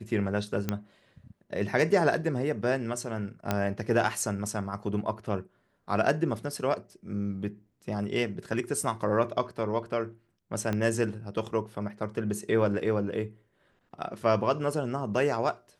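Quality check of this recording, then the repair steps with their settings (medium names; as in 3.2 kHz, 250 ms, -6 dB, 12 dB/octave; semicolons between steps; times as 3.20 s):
0.69 s: pop -14 dBFS
3.51 s: pop -12 dBFS
10.73 s: pop -17 dBFS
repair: de-click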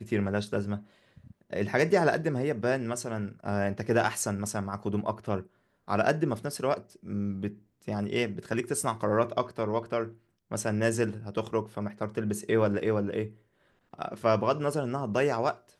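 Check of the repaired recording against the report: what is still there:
10.73 s: pop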